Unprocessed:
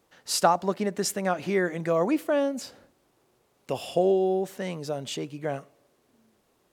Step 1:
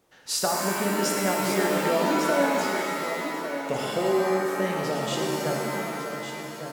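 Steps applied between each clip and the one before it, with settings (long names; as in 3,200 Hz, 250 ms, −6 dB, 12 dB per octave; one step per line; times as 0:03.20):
downward compressor, threshold −24 dBFS, peak gain reduction 9 dB
single-tap delay 1,153 ms −9 dB
reverb with rising layers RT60 2.1 s, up +7 semitones, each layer −2 dB, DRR −0.5 dB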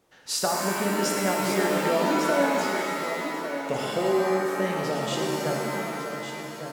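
high-shelf EQ 11,000 Hz −3.5 dB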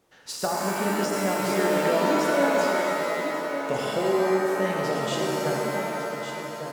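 de-essing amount 60%
on a send: delay with a band-pass on its return 83 ms, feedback 80%, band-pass 790 Hz, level −7 dB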